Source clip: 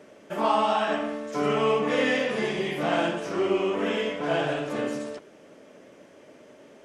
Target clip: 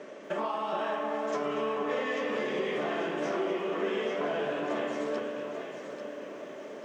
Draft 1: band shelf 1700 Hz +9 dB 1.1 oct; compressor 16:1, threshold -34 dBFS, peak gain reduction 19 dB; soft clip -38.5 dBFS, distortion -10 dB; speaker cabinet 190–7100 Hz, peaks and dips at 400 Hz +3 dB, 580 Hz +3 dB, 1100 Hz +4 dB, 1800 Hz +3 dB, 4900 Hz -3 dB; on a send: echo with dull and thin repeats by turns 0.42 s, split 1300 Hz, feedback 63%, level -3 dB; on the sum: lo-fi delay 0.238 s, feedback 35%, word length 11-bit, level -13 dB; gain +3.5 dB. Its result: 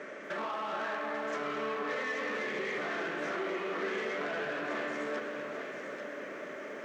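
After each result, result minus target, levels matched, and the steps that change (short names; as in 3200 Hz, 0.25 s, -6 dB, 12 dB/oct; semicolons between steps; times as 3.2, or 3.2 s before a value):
soft clip: distortion +14 dB; 2000 Hz band +5.5 dB
change: soft clip -27.5 dBFS, distortion -24 dB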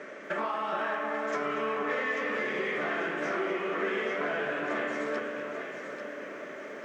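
2000 Hz band +5.5 dB
remove: band shelf 1700 Hz +9 dB 1.1 oct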